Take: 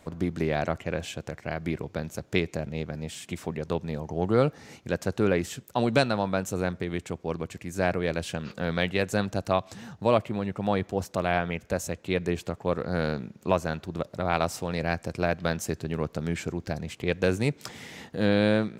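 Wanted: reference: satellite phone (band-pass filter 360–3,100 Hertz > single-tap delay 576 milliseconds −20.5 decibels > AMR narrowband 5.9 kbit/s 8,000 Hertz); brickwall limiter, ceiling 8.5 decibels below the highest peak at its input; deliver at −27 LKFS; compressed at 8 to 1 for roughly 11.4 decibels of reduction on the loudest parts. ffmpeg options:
ffmpeg -i in.wav -af "acompressor=threshold=-29dB:ratio=8,alimiter=limit=-23.5dB:level=0:latency=1,highpass=360,lowpass=3100,aecho=1:1:576:0.0944,volume=16dB" -ar 8000 -c:a libopencore_amrnb -b:a 5900 out.amr

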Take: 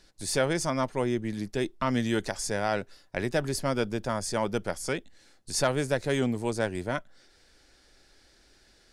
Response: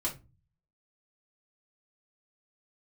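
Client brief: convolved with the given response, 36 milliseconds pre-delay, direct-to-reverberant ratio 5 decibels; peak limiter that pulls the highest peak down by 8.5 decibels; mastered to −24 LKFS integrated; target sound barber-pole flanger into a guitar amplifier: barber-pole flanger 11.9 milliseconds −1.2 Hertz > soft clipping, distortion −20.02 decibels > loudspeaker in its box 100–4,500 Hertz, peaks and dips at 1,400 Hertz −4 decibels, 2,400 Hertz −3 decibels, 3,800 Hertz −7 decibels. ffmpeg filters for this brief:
-filter_complex "[0:a]alimiter=limit=-22.5dB:level=0:latency=1,asplit=2[link_01][link_02];[1:a]atrim=start_sample=2205,adelay=36[link_03];[link_02][link_03]afir=irnorm=-1:irlink=0,volume=-8.5dB[link_04];[link_01][link_04]amix=inputs=2:normalize=0,asplit=2[link_05][link_06];[link_06]adelay=11.9,afreqshift=-1.2[link_07];[link_05][link_07]amix=inputs=2:normalize=1,asoftclip=threshold=-26dB,highpass=100,equalizer=frequency=1400:width_type=q:width=4:gain=-4,equalizer=frequency=2400:width_type=q:width=4:gain=-3,equalizer=frequency=3800:width_type=q:width=4:gain=-7,lowpass=frequency=4500:width=0.5412,lowpass=frequency=4500:width=1.3066,volume=14dB"

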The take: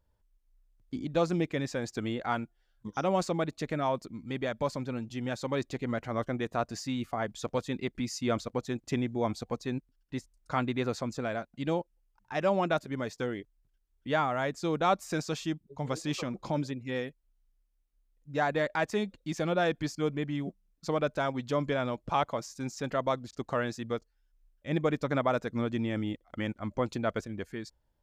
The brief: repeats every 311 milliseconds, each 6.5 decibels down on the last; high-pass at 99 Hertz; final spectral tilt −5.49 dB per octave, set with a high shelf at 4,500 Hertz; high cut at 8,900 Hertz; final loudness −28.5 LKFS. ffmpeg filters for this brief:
ffmpeg -i in.wav -af "highpass=99,lowpass=8900,highshelf=frequency=4500:gain=-8,aecho=1:1:311|622|933|1244|1555|1866:0.473|0.222|0.105|0.0491|0.0231|0.0109,volume=3.5dB" out.wav

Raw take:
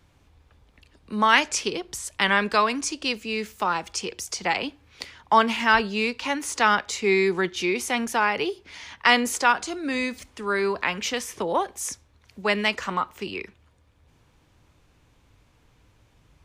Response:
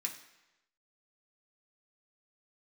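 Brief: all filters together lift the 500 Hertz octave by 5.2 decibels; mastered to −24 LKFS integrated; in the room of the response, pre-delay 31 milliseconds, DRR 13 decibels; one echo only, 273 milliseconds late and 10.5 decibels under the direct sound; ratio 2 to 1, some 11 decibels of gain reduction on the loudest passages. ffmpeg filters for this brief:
-filter_complex "[0:a]equalizer=frequency=500:width_type=o:gain=7,acompressor=threshold=-31dB:ratio=2,aecho=1:1:273:0.299,asplit=2[link_01][link_02];[1:a]atrim=start_sample=2205,adelay=31[link_03];[link_02][link_03]afir=irnorm=-1:irlink=0,volume=-13dB[link_04];[link_01][link_04]amix=inputs=2:normalize=0,volume=5.5dB"

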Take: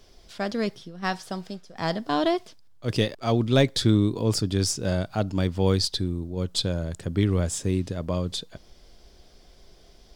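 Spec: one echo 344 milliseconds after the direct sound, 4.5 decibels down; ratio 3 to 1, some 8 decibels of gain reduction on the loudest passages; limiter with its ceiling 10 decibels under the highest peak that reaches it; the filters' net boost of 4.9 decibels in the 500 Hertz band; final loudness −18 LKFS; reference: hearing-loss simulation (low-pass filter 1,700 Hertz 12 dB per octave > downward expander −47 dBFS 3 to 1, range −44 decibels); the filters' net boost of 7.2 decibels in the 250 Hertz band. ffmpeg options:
ffmpeg -i in.wav -af "equalizer=frequency=250:width_type=o:gain=8.5,equalizer=frequency=500:width_type=o:gain=3.5,acompressor=threshold=-21dB:ratio=3,alimiter=limit=-20dB:level=0:latency=1,lowpass=1700,aecho=1:1:344:0.596,agate=range=-44dB:threshold=-47dB:ratio=3,volume=12.5dB" out.wav

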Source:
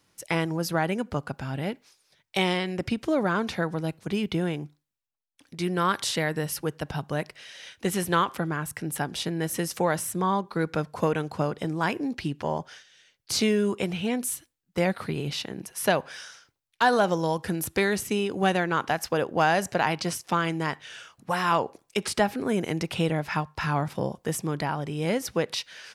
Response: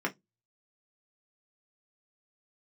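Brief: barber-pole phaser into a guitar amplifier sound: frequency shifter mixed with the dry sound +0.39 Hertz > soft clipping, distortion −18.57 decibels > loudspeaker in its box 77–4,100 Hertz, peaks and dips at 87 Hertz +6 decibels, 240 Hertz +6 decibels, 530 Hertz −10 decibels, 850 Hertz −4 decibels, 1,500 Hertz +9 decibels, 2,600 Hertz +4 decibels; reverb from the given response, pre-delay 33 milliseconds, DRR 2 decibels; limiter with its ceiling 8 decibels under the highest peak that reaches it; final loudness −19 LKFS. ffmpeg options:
-filter_complex "[0:a]alimiter=limit=-17dB:level=0:latency=1,asplit=2[link_01][link_02];[1:a]atrim=start_sample=2205,adelay=33[link_03];[link_02][link_03]afir=irnorm=-1:irlink=0,volume=-9dB[link_04];[link_01][link_04]amix=inputs=2:normalize=0,asplit=2[link_05][link_06];[link_06]afreqshift=0.39[link_07];[link_05][link_07]amix=inputs=2:normalize=1,asoftclip=threshold=-20.5dB,highpass=77,equalizer=frequency=87:width_type=q:width=4:gain=6,equalizer=frequency=240:width_type=q:width=4:gain=6,equalizer=frequency=530:width_type=q:width=4:gain=-10,equalizer=frequency=850:width_type=q:width=4:gain=-4,equalizer=frequency=1500:width_type=q:width=4:gain=9,equalizer=frequency=2600:width_type=q:width=4:gain=4,lowpass=frequency=4100:width=0.5412,lowpass=frequency=4100:width=1.3066,volume=11dB"

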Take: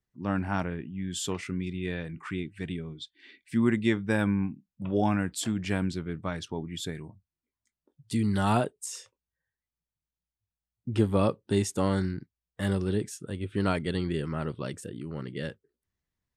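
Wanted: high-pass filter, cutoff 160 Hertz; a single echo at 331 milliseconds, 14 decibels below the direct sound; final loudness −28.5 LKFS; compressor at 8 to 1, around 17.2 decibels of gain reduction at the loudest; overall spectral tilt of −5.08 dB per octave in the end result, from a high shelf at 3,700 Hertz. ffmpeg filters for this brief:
ffmpeg -i in.wav -af "highpass=160,highshelf=frequency=3700:gain=-7.5,acompressor=threshold=-39dB:ratio=8,aecho=1:1:331:0.2,volume=16dB" out.wav

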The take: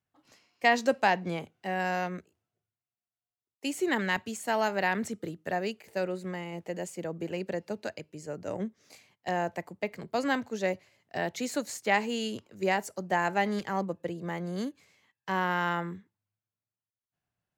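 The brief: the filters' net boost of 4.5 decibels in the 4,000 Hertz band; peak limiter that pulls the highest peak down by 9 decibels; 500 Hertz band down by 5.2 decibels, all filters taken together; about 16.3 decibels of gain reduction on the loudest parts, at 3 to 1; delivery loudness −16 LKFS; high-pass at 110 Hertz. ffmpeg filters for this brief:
ffmpeg -i in.wav -af "highpass=110,equalizer=frequency=500:width_type=o:gain=-7,equalizer=frequency=4000:width_type=o:gain=6.5,acompressor=threshold=-43dB:ratio=3,volume=29.5dB,alimiter=limit=-4.5dB:level=0:latency=1" out.wav

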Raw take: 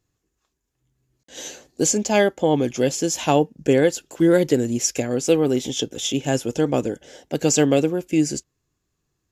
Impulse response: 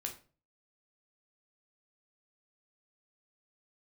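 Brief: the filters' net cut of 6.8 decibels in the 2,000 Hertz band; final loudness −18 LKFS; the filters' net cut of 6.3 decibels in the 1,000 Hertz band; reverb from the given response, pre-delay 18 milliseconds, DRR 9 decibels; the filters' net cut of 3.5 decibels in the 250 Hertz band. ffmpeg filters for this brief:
-filter_complex "[0:a]equalizer=frequency=250:width_type=o:gain=-4,equalizer=frequency=1000:width_type=o:gain=-8,equalizer=frequency=2000:width_type=o:gain=-6.5,asplit=2[link_01][link_02];[1:a]atrim=start_sample=2205,adelay=18[link_03];[link_02][link_03]afir=irnorm=-1:irlink=0,volume=-8dB[link_04];[link_01][link_04]amix=inputs=2:normalize=0,volume=4.5dB"

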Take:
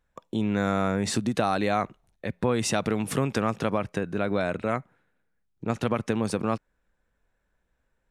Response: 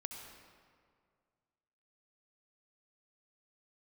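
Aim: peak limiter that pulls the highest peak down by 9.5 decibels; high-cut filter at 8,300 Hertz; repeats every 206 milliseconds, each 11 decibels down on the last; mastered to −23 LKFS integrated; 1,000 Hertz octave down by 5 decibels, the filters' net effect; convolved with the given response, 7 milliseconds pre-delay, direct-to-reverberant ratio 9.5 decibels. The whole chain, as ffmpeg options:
-filter_complex "[0:a]lowpass=8300,equalizer=frequency=1000:width_type=o:gain=-7.5,alimiter=limit=-20dB:level=0:latency=1,aecho=1:1:206|412|618:0.282|0.0789|0.0221,asplit=2[link_01][link_02];[1:a]atrim=start_sample=2205,adelay=7[link_03];[link_02][link_03]afir=irnorm=-1:irlink=0,volume=-7.5dB[link_04];[link_01][link_04]amix=inputs=2:normalize=0,volume=9dB"

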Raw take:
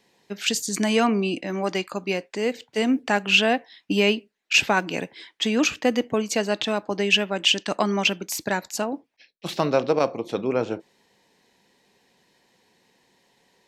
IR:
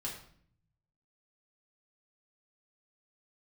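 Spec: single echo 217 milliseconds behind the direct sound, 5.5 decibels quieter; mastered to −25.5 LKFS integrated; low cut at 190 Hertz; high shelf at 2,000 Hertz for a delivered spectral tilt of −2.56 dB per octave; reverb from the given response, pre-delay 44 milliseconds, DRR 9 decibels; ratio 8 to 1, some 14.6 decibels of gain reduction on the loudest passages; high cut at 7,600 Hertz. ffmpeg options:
-filter_complex "[0:a]highpass=190,lowpass=7600,highshelf=frequency=2000:gain=5,acompressor=threshold=-26dB:ratio=8,aecho=1:1:217:0.531,asplit=2[link_01][link_02];[1:a]atrim=start_sample=2205,adelay=44[link_03];[link_02][link_03]afir=irnorm=-1:irlink=0,volume=-9.5dB[link_04];[link_01][link_04]amix=inputs=2:normalize=0,volume=3.5dB"

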